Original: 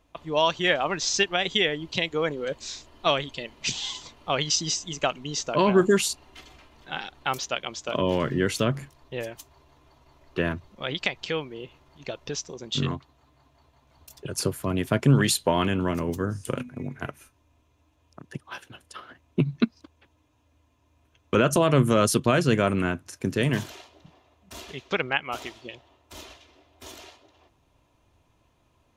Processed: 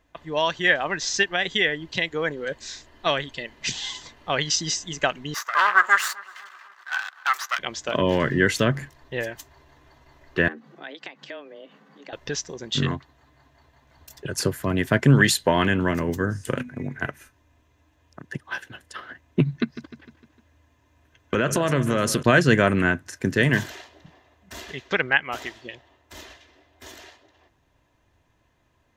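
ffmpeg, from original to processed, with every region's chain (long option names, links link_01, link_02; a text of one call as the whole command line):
ffmpeg -i in.wav -filter_complex "[0:a]asettb=1/sr,asplit=3[link_01][link_02][link_03];[link_01]atrim=end=5.344[link_04];[link_02]atrim=start=5.34:end=7.59,asetpts=PTS-STARTPTS,afade=type=in:duration=0.004:curve=qsin,afade=type=out:start_time=2.246:duration=0.004:curve=qsin,aeval=exprs='max(val(0),0)':channel_layout=same,highpass=frequency=1200:width_type=q:width=5.3,asplit=2[link_05][link_06];[link_06]adelay=255,lowpass=frequency=2300:poles=1,volume=-21.5dB,asplit=2[link_07][link_08];[link_08]adelay=255,lowpass=frequency=2300:poles=1,volume=0.53,asplit=2[link_09][link_10];[link_10]adelay=255,lowpass=frequency=2300:poles=1,volume=0.53,asplit=2[link_11][link_12];[link_12]adelay=255,lowpass=frequency=2300:poles=1,volume=0.53[link_13];[link_05][link_07][link_09][link_11][link_13]amix=inputs=5:normalize=0,atrim=end_sample=99225[link_14];[link_03]atrim=start=7.586[link_15];[link_04][link_14]acrossfade=duration=0.004:curve1=hsin:curve2=qsin[link_16];[link_16][link_15]acrossfade=duration=0.004:curve1=qsin:curve2=hsin,asettb=1/sr,asplit=3[link_17][link_18][link_19];[link_17]atrim=end=10.484[link_20];[link_18]atrim=start=10.48:end=12.13,asetpts=PTS-STARTPTS,afade=type=in:duration=0.004:curve=qsin,afade=type=out:start_time=1.646:duration=0.004:curve=qsin,acompressor=threshold=-47dB:ratio=2:attack=3.2:release=140:knee=1:detection=peak,afreqshift=140,highshelf=frequency=4100:gain=-8[link_21];[link_19]atrim=start=12.126[link_22];[link_20][link_21]acrossfade=duration=0.004:curve1=hsin:curve2=qsin[link_23];[link_23][link_22]acrossfade=duration=0.004:curve1=qsin:curve2=hsin,asettb=1/sr,asplit=3[link_24][link_25][link_26];[link_24]atrim=end=19.464[link_27];[link_25]atrim=start=19.46:end=22.23,asetpts=PTS-STARTPTS,afade=type=in:duration=0.004:curve=qsin,afade=type=out:start_time=2.766:duration=0.004:curve=qsin,acompressor=threshold=-22dB:ratio=3:attack=3.2:release=140:knee=1:detection=peak,aecho=1:1:152|304|456|608|760:0.211|0.108|0.055|0.028|0.0143,atrim=end_sample=122157[link_28];[link_26]atrim=start=22.226[link_29];[link_27][link_28]acrossfade=duration=0.004:curve1=hsin:curve2=qsin[link_30];[link_30][link_29]acrossfade=duration=0.004:curve1=qsin:curve2=hsin,superequalizer=11b=2.51:16b=0.631,dynaudnorm=framelen=600:gausssize=17:maxgain=11.5dB,volume=-1dB" out.wav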